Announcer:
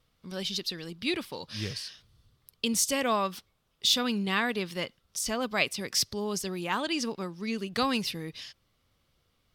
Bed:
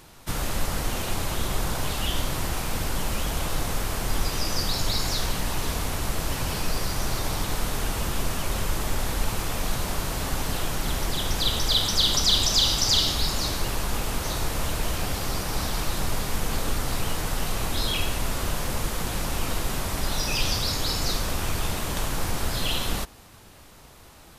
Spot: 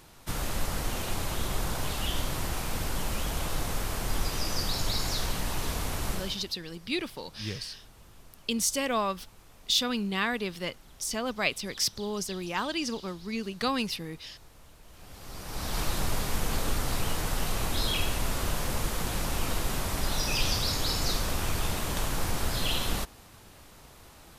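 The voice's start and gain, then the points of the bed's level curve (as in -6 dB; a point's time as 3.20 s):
5.85 s, -1.0 dB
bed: 6.13 s -4 dB
6.56 s -27 dB
14.84 s -27 dB
15.79 s -2.5 dB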